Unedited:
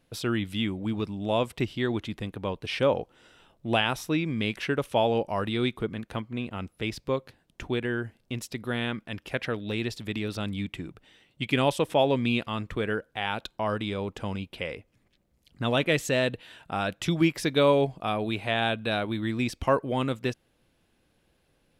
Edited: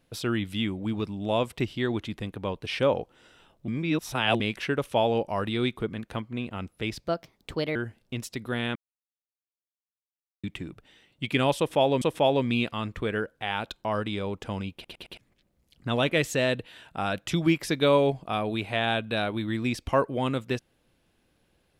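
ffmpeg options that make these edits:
ffmpeg -i in.wav -filter_complex "[0:a]asplit=12[link_01][link_02][link_03][link_04][link_05][link_06][link_07][link_08][link_09][link_10][link_11][link_12];[link_01]atrim=end=3.682[link_13];[link_02]atrim=start=3.678:end=4.402,asetpts=PTS-STARTPTS,areverse[link_14];[link_03]atrim=start=4.398:end=7.074[link_15];[link_04]atrim=start=7.07:end=7.94,asetpts=PTS-STARTPTS,asetrate=56007,aresample=44100,atrim=end_sample=30210,asetpts=PTS-STARTPTS[link_16];[link_05]atrim=start=7.936:end=8.94,asetpts=PTS-STARTPTS,afade=type=out:start_time=1:duration=0.004:curve=hsin[link_17];[link_06]atrim=start=8.94:end=10.62,asetpts=PTS-STARTPTS,volume=0[link_18];[link_07]atrim=start=10.62:end=12.202,asetpts=PTS-STARTPTS,afade=type=in:duration=0.004:curve=hsin[link_19];[link_08]atrim=start=11.758:end=14.592[link_20];[link_09]atrim=start=14.478:end=14.592[link_21];[link_10]atrim=start=14.478:end=14.592[link_22];[link_11]atrim=start=14.478:end=14.592[link_23];[link_12]atrim=start=14.918[link_24];[link_13][link_14]acrossfade=duration=0.004:curve1=hsin:curve2=hsin[link_25];[link_25][link_15]acrossfade=duration=0.004:curve1=hsin:curve2=hsin[link_26];[link_26][link_16]acrossfade=duration=0.004:curve1=hsin:curve2=hsin[link_27];[link_17][link_18][link_19]concat=n=3:v=0:a=1[link_28];[link_27][link_28]acrossfade=duration=0.004:curve1=hsin:curve2=hsin[link_29];[link_29][link_20]acrossfade=duration=0.004:curve1=hsin:curve2=hsin[link_30];[link_30][link_21]acrossfade=duration=0.004:curve1=hsin:curve2=hsin[link_31];[link_31][link_22]acrossfade=duration=0.004:curve1=hsin:curve2=hsin[link_32];[link_32][link_23]acrossfade=duration=0.004:curve1=hsin:curve2=hsin[link_33];[link_33][link_24]acrossfade=duration=0.004:curve1=hsin:curve2=hsin" out.wav

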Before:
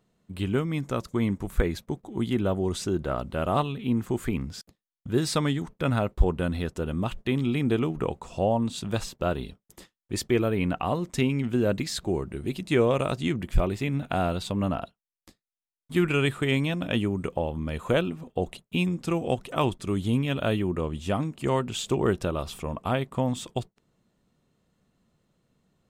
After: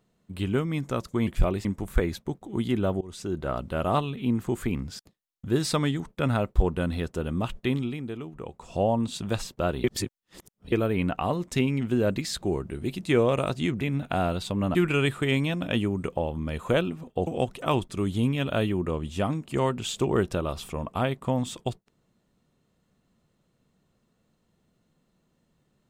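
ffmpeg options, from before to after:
ffmpeg -i in.wav -filter_complex "[0:a]asplit=11[link_01][link_02][link_03][link_04][link_05][link_06][link_07][link_08][link_09][link_10][link_11];[link_01]atrim=end=1.272[link_12];[link_02]atrim=start=13.428:end=13.812[link_13];[link_03]atrim=start=1.268:end=2.63,asetpts=PTS-STARTPTS,afade=type=out:start_time=1.358:duration=0.004:curve=hsin:silence=0.0707946[link_14];[link_04]atrim=start=2.63:end=7.74,asetpts=PTS-STARTPTS,afade=type=in:duration=0.67:curve=qsin:silence=0.0707946,afade=type=out:start_time=4.72:duration=0.39:curve=qua:silence=0.281838[link_15];[link_05]atrim=start=7.74:end=7.98,asetpts=PTS-STARTPTS,volume=-11dB[link_16];[link_06]atrim=start=7.98:end=9.462,asetpts=PTS-STARTPTS,afade=type=in:duration=0.39:curve=qua:silence=0.281838[link_17];[link_07]atrim=start=9.458:end=10.342,asetpts=PTS-STARTPTS,areverse[link_18];[link_08]atrim=start=10.338:end=13.432[link_19];[link_09]atrim=start=13.808:end=14.752[link_20];[link_10]atrim=start=15.948:end=18.472[link_21];[link_11]atrim=start=19.168[link_22];[link_12][link_13]acrossfade=duration=0.004:curve1=hsin:curve2=hsin[link_23];[link_14][link_15][link_16][link_17]concat=n=4:v=0:a=1[link_24];[link_23][link_24]acrossfade=duration=0.004:curve1=hsin:curve2=hsin[link_25];[link_25][link_18]acrossfade=duration=0.004:curve1=hsin:curve2=hsin[link_26];[link_26][link_19]acrossfade=duration=0.004:curve1=hsin:curve2=hsin[link_27];[link_27][link_20]acrossfade=duration=0.004:curve1=hsin:curve2=hsin[link_28];[link_28][link_21]acrossfade=duration=0.004:curve1=hsin:curve2=hsin[link_29];[link_29][link_22]acrossfade=duration=0.004:curve1=hsin:curve2=hsin" out.wav

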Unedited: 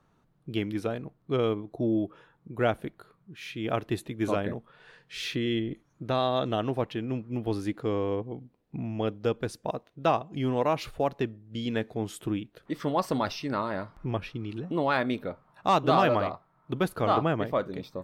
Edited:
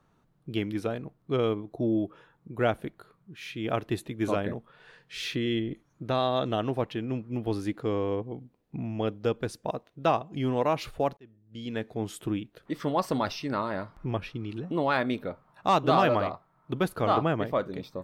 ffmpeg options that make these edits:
ffmpeg -i in.wav -filter_complex "[0:a]asplit=2[link_01][link_02];[link_01]atrim=end=11.17,asetpts=PTS-STARTPTS,afade=type=out:start_time=11.166:duration=0.004:curve=hsin[link_03];[link_02]atrim=start=11.17,asetpts=PTS-STARTPTS,afade=type=in:duration=0.88[link_04];[link_03][link_04]concat=n=2:v=0:a=1" out.wav

